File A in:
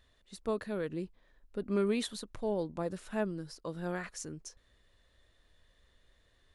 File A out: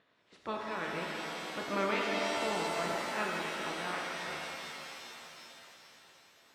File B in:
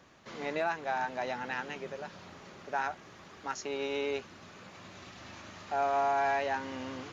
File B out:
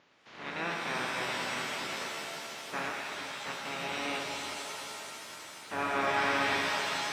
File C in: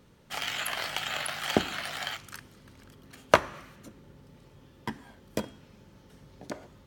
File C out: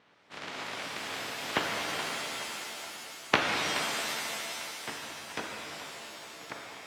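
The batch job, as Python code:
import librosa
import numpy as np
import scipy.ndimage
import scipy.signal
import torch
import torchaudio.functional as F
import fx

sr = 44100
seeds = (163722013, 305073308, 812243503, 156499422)

p1 = fx.spec_clip(x, sr, under_db=24)
p2 = fx.wow_flutter(p1, sr, seeds[0], rate_hz=2.1, depth_cents=24.0)
p3 = fx.bandpass_edges(p2, sr, low_hz=140.0, high_hz=2700.0)
p4 = p3 + fx.echo_thinned(p3, sr, ms=424, feedback_pct=53, hz=420.0, wet_db=-11.5, dry=0)
p5 = fx.rev_shimmer(p4, sr, seeds[1], rt60_s=3.0, semitones=7, shimmer_db=-2, drr_db=-0.5)
y = p5 * librosa.db_to_amplitude(-3.5)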